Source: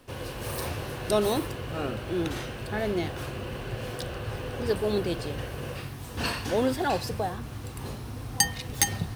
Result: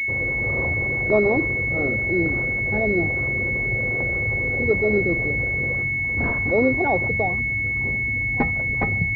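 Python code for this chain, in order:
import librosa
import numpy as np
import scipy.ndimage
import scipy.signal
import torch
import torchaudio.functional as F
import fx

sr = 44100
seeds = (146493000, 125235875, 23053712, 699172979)

y = fx.envelope_sharpen(x, sr, power=1.5)
y = fx.pwm(y, sr, carrier_hz=2200.0)
y = y * 10.0 ** (6.0 / 20.0)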